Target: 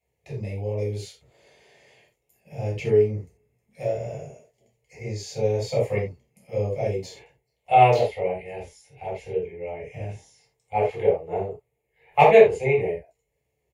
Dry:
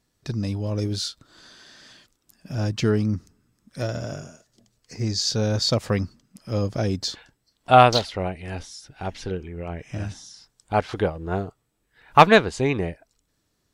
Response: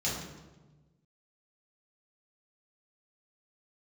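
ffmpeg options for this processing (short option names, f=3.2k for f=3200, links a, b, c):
-filter_complex "[0:a]firequalizer=gain_entry='entry(100,0);entry(190,-7);entry(280,-10);entry(420,12);entry(910,6);entry(1400,-13);entry(2100,12);entry(3700,-8);entry(5400,-10);entry(9900,8)':delay=0.05:min_phase=1[a];[1:a]atrim=start_sample=2205,atrim=end_sample=4410[b];[a][b]afir=irnorm=-1:irlink=0,volume=-14dB"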